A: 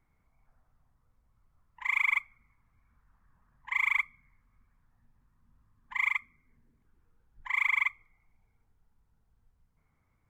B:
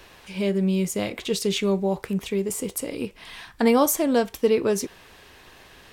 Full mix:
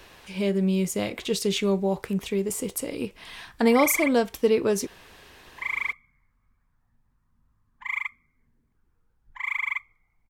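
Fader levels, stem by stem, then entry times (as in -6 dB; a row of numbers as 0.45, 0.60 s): -1.0, -1.0 dB; 1.90, 0.00 s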